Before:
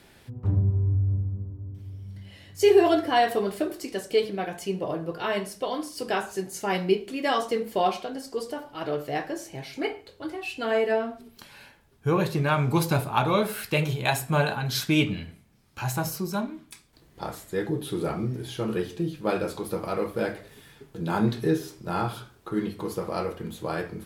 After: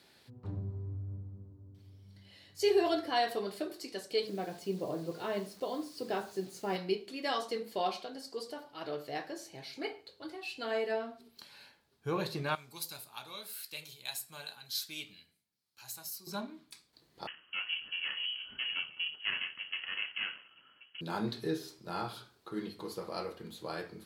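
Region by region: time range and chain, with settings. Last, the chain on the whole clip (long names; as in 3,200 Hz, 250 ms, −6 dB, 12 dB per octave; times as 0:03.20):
0:04.27–0:06.76: high-pass filter 64 Hz + tilt shelving filter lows +6.5 dB, about 850 Hz + bit-depth reduction 8 bits, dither none
0:12.55–0:16.27: first-order pre-emphasis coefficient 0.9 + one half of a high-frequency compander decoder only
0:17.27–0:21.01: lower of the sound and its delayed copy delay 0.64 ms + high-pass filter 110 Hz + voice inversion scrambler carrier 3,100 Hz
whole clip: high-pass filter 210 Hz 6 dB per octave; parametric band 4,300 Hz +9.5 dB 0.5 octaves; level −9 dB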